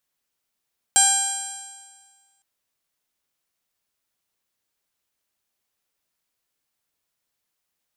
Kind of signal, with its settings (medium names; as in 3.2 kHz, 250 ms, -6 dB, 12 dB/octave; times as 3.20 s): stretched partials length 1.46 s, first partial 789 Hz, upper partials -5/-13/-3/-9.5/-8/-7.5/-10/6/5.5/-12.5/-10/-7 dB, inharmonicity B 0.0011, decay 1.59 s, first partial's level -21 dB